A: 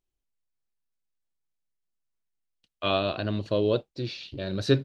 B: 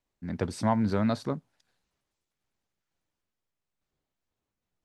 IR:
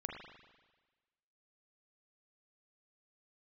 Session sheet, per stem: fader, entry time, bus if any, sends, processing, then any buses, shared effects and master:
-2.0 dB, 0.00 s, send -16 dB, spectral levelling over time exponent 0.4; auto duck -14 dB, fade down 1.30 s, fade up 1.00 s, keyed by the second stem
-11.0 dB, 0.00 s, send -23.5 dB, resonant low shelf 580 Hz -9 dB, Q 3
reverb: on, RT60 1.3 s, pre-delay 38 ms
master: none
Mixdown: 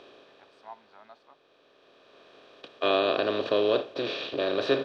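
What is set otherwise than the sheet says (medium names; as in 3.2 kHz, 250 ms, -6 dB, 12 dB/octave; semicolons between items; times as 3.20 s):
stem B -11.0 dB -> -20.5 dB; master: extra three-band isolator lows -22 dB, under 310 Hz, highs -21 dB, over 4.3 kHz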